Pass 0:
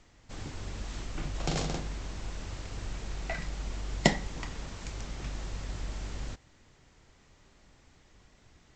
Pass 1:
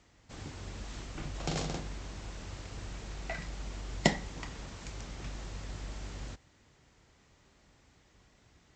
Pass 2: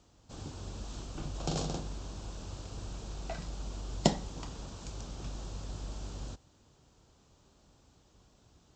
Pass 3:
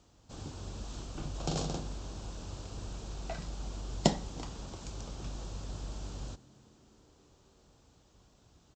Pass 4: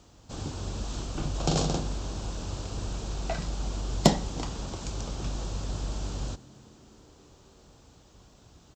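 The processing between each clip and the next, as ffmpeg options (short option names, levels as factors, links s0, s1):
-af "highpass=43,volume=0.75"
-af "equalizer=f=2000:t=o:w=0.6:g=-14.5,volume=1.12"
-filter_complex "[0:a]asplit=6[s0][s1][s2][s3][s4][s5];[s1]adelay=339,afreqshift=83,volume=0.0668[s6];[s2]adelay=678,afreqshift=166,volume=0.0427[s7];[s3]adelay=1017,afreqshift=249,volume=0.0272[s8];[s4]adelay=1356,afreqshift=332,volume=0.0176[s9];[s5]adelay=1695,afreqshift=415,volume=0.0112[s10];[s0][s6][s7][s8][s9][s10]amix=inputs=6:normalize=0"
-af "aeval=exprs='0.473*sin(PI/2*1.58*val(0)/0.473)':c=same"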